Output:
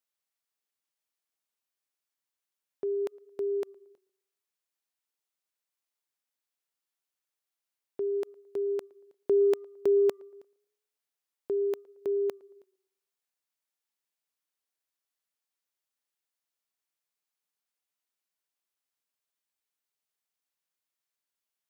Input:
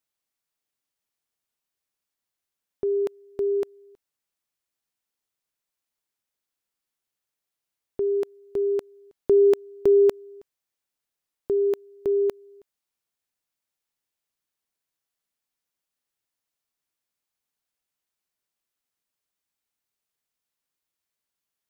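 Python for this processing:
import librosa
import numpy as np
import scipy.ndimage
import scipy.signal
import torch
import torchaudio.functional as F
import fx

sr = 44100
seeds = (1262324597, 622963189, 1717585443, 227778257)

y = fx.highpass(x, sr, hz=380.0, slope=6)
y = fx.echo_tape(y, sr, ms=113, feedback_pct=41, wet_db=-24, lp_hz=1300.0, drive_db=16.0, wow_cents=34)
y = F.gain(torch.from_numpy(y), -3.5).numpy()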